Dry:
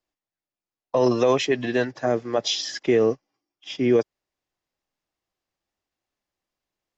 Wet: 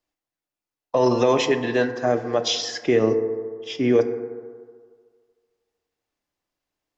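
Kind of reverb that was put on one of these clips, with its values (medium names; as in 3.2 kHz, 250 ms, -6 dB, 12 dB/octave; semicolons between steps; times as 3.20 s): FDN reverb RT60 1.8 s, low-frequency decay 0.8×, high-frequency decay 0.3×, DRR 7.5 dB; trim +1 dB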